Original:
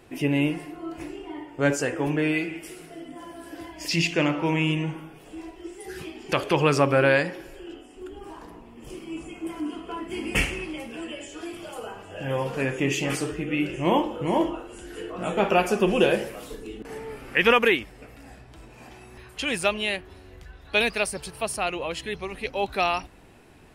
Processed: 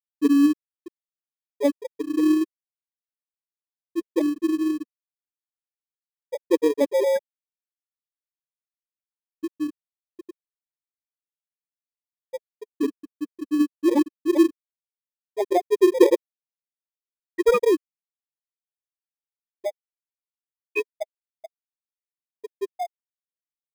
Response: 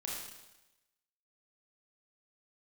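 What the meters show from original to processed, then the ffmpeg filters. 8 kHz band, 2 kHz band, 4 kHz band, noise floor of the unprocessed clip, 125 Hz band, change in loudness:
−8.0 dB, −13.0 dB, −12.0 dB, −48 dBFS, below −25 dB, +2.0 dB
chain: -filter_complex "[0:a]lowshelf=frequency=240:width_type=q:width=3:gain=-8.5,afftfilt=real='re*gte(hypot(re,im),0.794)':imag='im*gte(hypot(re,im),0.794)':win_size=1024:overlap=0.75,aphaser=in_gain=1:out_gain=1:delay=4.7:decay=0.25:speed=0.12:type=sinusoidal,asplit=2[link_01][link_02];[link_02]acrusher=samples=31:mix=1:aa=0.000001,volume=-10dB[link_03];[link_01][link_03]amix=inputs=2:normalize=0"

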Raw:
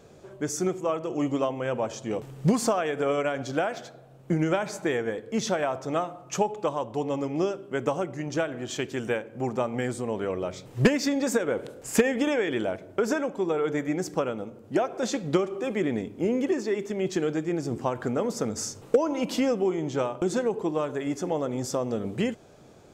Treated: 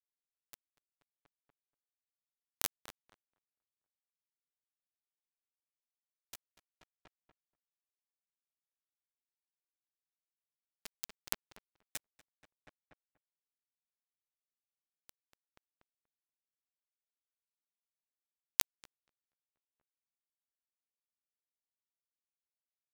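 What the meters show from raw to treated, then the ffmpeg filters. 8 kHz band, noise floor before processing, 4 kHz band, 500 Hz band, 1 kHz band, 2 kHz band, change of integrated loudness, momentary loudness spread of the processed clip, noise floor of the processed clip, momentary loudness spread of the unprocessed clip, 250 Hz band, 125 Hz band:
−11.0 dB, −51 dBFS, −11.5 dB, below −40 dB, −29.0 dB, −22.5 dB, −11.5 dB, 20 LU, below −85 dBFS, 6 LU, below −40 dB, −38.5 dB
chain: -filter_complex "[0:a]acrossover=split=3200[link_01][link_02];[link_01]acompressor=threshold=-34dB:ratio=8[link_03];[link_02]flanger=delay=4.1:depth=3:regen=-58:speed=0.29:shape=triangular[link_04];[link_03][link_04]amix=inputs=2:normalize=0,crystalizer=i=2.5:c=0,bandpass=frequency=2400:width_type=q:width=0.65:csg=0,acrusher=bits=3:mix=0:aa=0.000001,asplit=2[link_05][link_06];[link_06]adelay=240,lowpass=frequency=2400:poles=1,volume=-14.5dB,asplit=2[link_07][link_08];[link_08]adelay=240,lowpass=frequency=2400:poles=1,volume=0.5,asplit=2[link_09][link_10];[link_10]adelay=240,lowpass=frequency=2400:poles=1,volume=0.5,asplit=2[link_11][link_12];[link_12]adelay=240,lowpass=frequency=2400:poles=1,volume=0.5,asplit=2[link_13][link_14];[link_14]adelay=240,lowpass=frequency=2400:poles=1,volume=0.5[link_15];[link_07][link_09][link_11][link_13][link_15]amix=inputs=5:normalize=0[link_16];[link_05][link_16]amix=inputs=2:normalize=0,aeval=exprs='val(0)*pow(10,-27*(0.5-0.5*cos(2*PI*0.7*n/s))/20)':channel_layout=same,volume=15.5dB"

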